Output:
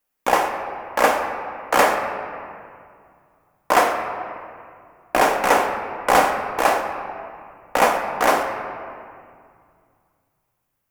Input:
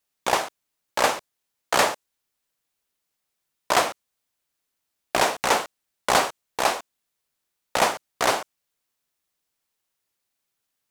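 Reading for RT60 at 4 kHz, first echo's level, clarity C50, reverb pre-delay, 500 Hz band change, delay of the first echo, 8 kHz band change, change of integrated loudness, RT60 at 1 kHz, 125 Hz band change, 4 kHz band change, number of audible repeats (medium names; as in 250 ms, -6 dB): 1.4 s, no echo, 5.5 dB, 4 ms, +6.0 dB, no echo, -2.0 dB, +3.5 dB, 2.2 s, +2.5 dB, -3.0 dB, no echo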